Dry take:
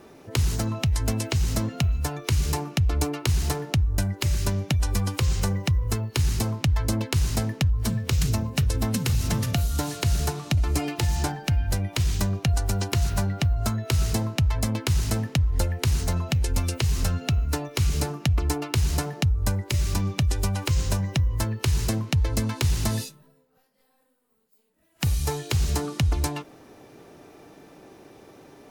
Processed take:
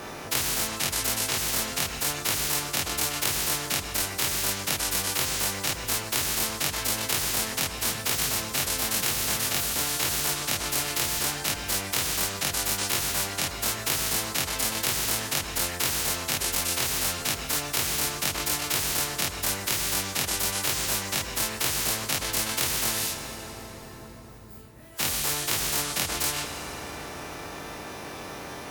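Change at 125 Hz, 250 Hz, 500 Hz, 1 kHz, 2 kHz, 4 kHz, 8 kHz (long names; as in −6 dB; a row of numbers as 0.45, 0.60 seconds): −16.0, −8.0, −1.5, +2.0, +5.5, +6.0, +8.5 decibels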